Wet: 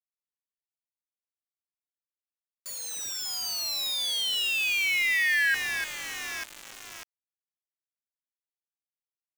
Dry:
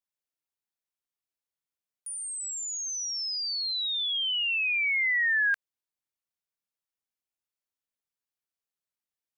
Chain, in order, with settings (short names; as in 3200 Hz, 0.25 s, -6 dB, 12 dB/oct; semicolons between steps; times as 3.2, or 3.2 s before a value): echo with dull and thin repeats by turns 0.298 s, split 2400 Hz, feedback 82%, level -6.5 dB; sample gate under -31 dBFS